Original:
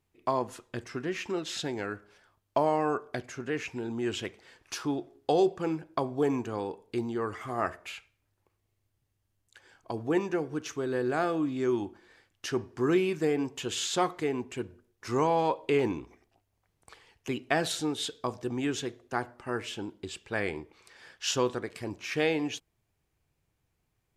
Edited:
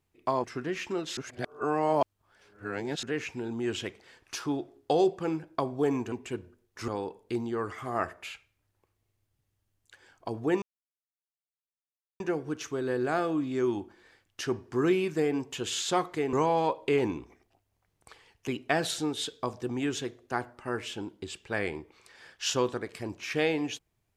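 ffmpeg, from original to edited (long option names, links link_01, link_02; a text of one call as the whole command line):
ffmpeg -i in.wav -filter_complex "[0:a]asplit=8[link_01][link_02][link_03][link_04][link_05][link_06][link_07][link_08];[link_01]atrim=end=0.442[link_09];[link_02]atrim=start=0.828:end=1.562[link_10];[link_03]atrim=start=1.558:end=3.422,asetpts=PTS-STARTPTS,areverse[link_11];[link_04]atrim=start=3.418:end=6.512[link_12];[link_05]atrim=start=14.378:end=15.142[link_13];[link_06]atrim=start=6.508:end=10.25,asetpts=PTS-STARTPTS,afade=type=out:start_time=3.738:duration=0.004:curve=hsin,apad=pad_dur=1.58[link_14];[link_07]atrim=start=10.25:end=14.382,asetpts=PTS-STARTPTS,afade=type=in:duration=0.004:curve=hsin[link_15];[link_08]atrim=start=15.138[link_16];[link_09][link_10]acrossfade=duration=0.004:curve1=hsin:curve2=hsin[link_17];[link_17][link_11]acrossfade=duration=0.004:curve1=hsin:curve2=hsin[link_18];[link_18][link_12]acrossfade=duration=0.004:curve1=hsin:curve2=hsin[link_19];[link_19][link_13]acrossfade=duration=0.004:curve1=hsin:curve2=hsin[link_20];[link_14][link_15]concat=n=2:v=0:a=1[link_21];[link_20][link_21]acrossfade=duration=0.004:curve1=hsin:curve2=hsin[link_22];[link_22][link_16]acrossfade=duration=0.004:curve1=hsin:curve2=hsin" out.wav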